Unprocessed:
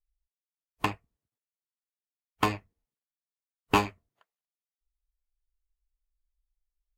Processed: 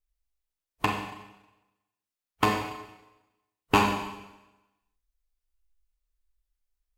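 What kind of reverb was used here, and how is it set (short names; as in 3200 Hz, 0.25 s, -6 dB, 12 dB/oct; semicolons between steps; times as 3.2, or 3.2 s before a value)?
Schroeder reverb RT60 1 s, combs from 31 ms, DRR 2.5 dB; gain +1.5 dB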